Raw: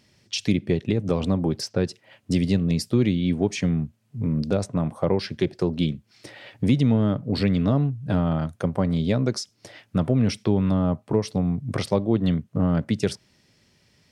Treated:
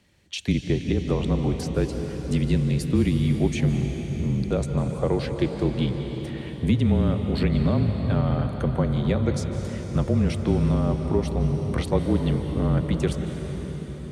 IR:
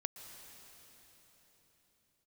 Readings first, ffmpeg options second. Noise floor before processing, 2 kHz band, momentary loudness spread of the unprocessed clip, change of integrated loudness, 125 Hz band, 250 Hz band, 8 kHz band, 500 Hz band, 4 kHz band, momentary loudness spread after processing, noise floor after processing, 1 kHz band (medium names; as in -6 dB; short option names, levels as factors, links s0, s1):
-64 dBFS, -0.5 dB, 7 LU, -0.5 dB, +1.5 dB, -1.5 dB, -3.0 dB, -0.5 dB, -3.0 dB, 8 LU, -35 dBFS, -0.5 dB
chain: -filter_complex "[0:a]equalizer=f=5200:w=4.1:g=-12,afreqshift=-29[s0];[1:a]atrim=start_sample=2205,asetrate=34398,aresample=44100[s1];[s0][s1]afir=irnorm=-1:irlink=0"